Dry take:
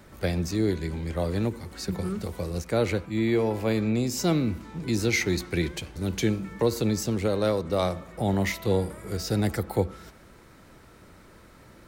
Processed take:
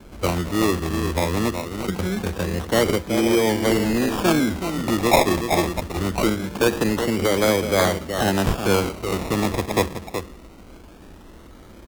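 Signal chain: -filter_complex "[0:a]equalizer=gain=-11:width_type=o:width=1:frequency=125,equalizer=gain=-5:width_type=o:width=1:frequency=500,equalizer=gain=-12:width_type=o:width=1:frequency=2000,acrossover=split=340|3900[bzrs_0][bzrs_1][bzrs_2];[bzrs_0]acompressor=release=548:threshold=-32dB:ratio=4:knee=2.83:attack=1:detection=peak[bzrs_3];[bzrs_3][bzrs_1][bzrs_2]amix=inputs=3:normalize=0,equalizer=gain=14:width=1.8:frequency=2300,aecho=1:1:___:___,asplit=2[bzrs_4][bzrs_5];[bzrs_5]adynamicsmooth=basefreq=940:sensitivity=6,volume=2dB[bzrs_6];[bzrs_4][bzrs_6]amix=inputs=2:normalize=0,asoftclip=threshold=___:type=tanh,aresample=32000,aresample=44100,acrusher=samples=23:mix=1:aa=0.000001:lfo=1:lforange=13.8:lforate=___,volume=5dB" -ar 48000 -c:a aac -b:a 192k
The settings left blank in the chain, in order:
373, 0.398, -11.5dB, 0.23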